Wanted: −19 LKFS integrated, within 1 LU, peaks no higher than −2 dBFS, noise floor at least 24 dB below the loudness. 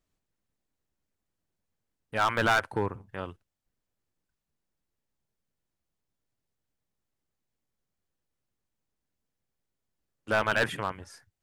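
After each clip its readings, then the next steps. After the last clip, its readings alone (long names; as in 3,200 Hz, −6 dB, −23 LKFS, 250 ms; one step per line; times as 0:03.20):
share of clipped samples 0.3%; peaks flattened at −18.5 dBFS; integrated loudness −28.0 LKFS; sample peak −18.5 dBFS; target loudness −19.0 LKFS
→ clipped peaks rebuilt −18.5 dBFS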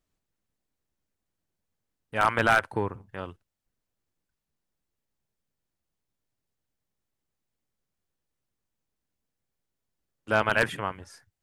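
share of clipped samples 0.0%; integrated loudness −26.0 LKFS; sample peak −9.5 dBFS; target loudness −19.0 LKFS
→ level +7 dB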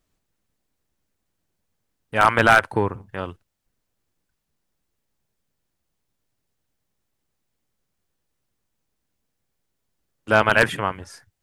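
integrated loudness −19.0 LKFS; sample peak −2.5 dBFS; background noise floor −78 dBFS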